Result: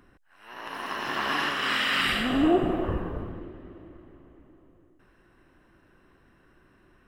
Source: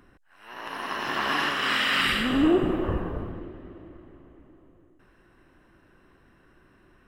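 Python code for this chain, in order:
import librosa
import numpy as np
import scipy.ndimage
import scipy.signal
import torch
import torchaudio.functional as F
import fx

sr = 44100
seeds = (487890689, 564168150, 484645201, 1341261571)

y = fx.dmg_crackle(x, sr, seeds[0], per_s=370.0, level_db=-42.0, at=(0.73, 1.35), fade=0.02)
y = fx.peak_eq(y, sr, hz=700.0, db=10.0, octaves=0.24, at=(2.07, 2.85))
y = y * 10.0 ** (-1.5 / 20.0)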